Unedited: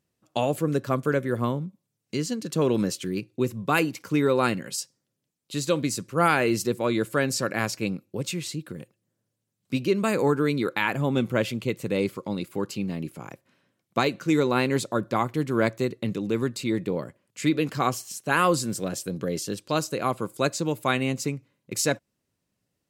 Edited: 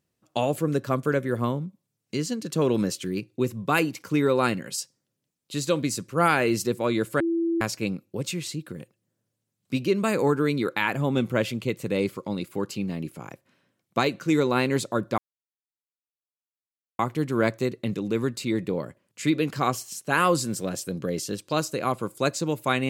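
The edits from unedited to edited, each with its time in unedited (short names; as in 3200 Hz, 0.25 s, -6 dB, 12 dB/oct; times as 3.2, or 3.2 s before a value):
7.2–7.61 bleep 334 Hz -21.5 dBFS
15.18 insert silence 1.81 s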